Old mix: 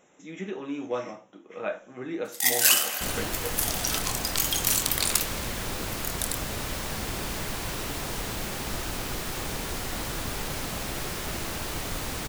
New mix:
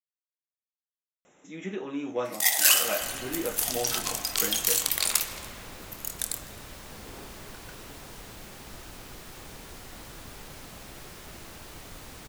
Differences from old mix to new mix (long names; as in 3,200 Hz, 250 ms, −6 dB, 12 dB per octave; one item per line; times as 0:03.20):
speech: entry +1.25 s
second sound −12.0 dB